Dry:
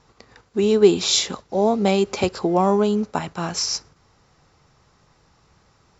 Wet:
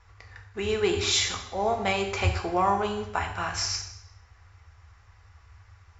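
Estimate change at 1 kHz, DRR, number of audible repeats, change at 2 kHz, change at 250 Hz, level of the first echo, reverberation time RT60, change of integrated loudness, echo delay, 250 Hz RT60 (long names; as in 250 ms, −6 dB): −2.0 dB, 3.0 dB, no echo audible, +2.5 dB, −13.0 dB, no echo audible, 0.75 s, −6.5 dB, no echo audible, 0.80 s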